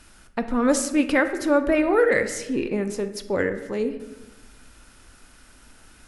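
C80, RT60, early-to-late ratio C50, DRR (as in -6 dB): 13.0 dB, 1.1 s, 11.0 dB, 8.0 dB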